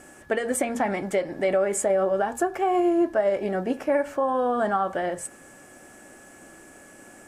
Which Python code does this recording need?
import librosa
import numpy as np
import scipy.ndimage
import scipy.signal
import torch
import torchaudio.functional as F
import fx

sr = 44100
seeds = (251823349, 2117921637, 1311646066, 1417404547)

y = fx.notch(x, sr, hz=1700.0, q=30.0)